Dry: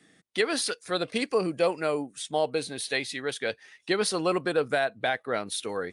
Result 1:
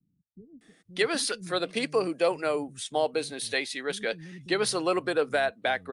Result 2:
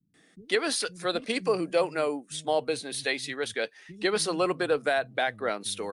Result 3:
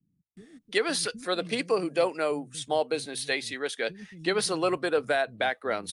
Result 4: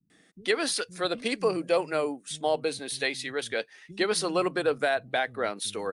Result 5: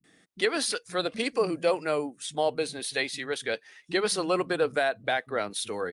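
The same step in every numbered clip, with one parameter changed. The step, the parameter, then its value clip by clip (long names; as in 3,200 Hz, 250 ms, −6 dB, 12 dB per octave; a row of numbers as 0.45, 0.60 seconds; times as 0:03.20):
multiband delay without the direct sound, delay time: 610, 140, 370, 100, 40 milliseconds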